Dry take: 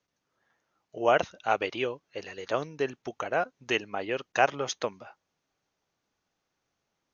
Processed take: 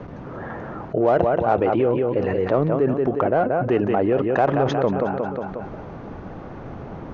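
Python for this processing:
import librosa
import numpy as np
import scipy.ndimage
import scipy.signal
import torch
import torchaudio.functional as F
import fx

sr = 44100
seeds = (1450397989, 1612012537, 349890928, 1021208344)

p1 = scipy.signal.sosfilt(scipy.signal.butter(2, 1100.0, 'lowpass', fs=sr, output='sos'), x)
p2 = fx.low_shelf(p1, sr, hz=410.0, db=9.5)
p3 = fx.echo_feedback(p2, sr, ms=180, feedback_pct=33, wet_db=-10.0)
p4 = 10.0 ** (-25.0 / 20.0) * np.tanh(p3 / 10.0 ** (-25.0 / 20.0))
p5 = p3 + (p4 * librosa.db_to_amplitude(-7.5))
y = fx.env_flatten(p5, sr, amount_pct=70)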